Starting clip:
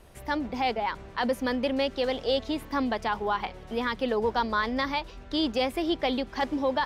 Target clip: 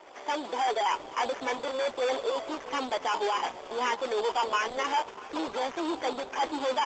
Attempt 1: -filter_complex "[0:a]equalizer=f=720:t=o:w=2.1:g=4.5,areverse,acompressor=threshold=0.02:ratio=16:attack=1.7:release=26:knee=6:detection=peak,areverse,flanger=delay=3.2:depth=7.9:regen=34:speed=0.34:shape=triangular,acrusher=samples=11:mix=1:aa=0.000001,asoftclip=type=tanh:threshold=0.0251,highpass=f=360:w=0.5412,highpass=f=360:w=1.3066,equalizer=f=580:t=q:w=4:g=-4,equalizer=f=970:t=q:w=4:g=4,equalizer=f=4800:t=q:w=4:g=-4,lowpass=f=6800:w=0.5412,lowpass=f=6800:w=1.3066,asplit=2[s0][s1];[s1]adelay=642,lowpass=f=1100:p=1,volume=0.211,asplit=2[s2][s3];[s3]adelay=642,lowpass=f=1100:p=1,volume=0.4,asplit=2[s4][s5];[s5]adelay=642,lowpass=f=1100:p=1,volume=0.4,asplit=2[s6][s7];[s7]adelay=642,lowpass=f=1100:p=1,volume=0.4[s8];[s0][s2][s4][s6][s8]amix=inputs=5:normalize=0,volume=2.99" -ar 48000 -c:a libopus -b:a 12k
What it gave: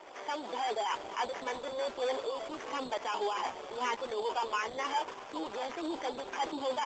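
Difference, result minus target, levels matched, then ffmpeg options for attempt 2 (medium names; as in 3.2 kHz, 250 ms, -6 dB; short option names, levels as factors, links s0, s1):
compression: peak gain reduction +9 dB
-filter_complex "[0:a]equalizer=f=720:t=o:w=2.1:g=4.5,areverse,acompressor=threshold=0.0596:ratio=16:attack=1.7:release=26:knee=6:detection=peak,areverse,flanger=delay=3.2:depth=7.9:regen=34:speed=0.34:shape=triangular,acrusher=samples=11:mix=1:aa=0.000001,asoftclip=type=tanh:threshold=0.0251,highpass=f=360:w=0.5412,highpass=f=360:w=1.3066,equalizer=f=580:t=q:w=4:g=-4,equalizer=f=970:t=q:w=4:g=4,equalizer=f=4800:t=q:w=4:g=-4,lowpass=f=6800:w=0.5412,lowpass=f=6800:w=1.3066,asplit=2[s0][s1];[s1]adelay=642,lowpass=f=1100:p=1,volume=0.211,asplit=2[s2][s3];[s3]adelay=642,lowpass=f=1100:p=1,volume=0.4,asplit=2[s4][s5];[s5]adelay=642,lowpass=f=1100:p=1,volume=0.4,asplit=2[s6][s7];[s7]adelay=642,lowpass=f=1100:p=1,volume=0.4[s8];[s0][s2][s4][s6][s8]amix=inputs=5:normalize=0,volume=2.99" -ar 48000 -c:a libopus -b:a 12k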